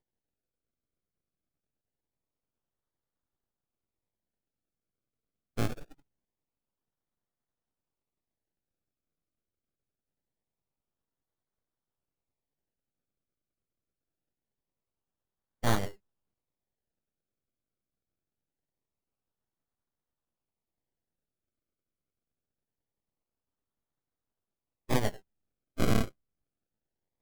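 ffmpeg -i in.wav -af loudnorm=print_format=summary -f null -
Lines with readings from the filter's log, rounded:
Input Integrated:    -32.8 LUFS
Input True Peak:     -11.2 dBTP
Input LRA:             8.3 LU
Input Threshold:     -44.1 LUFS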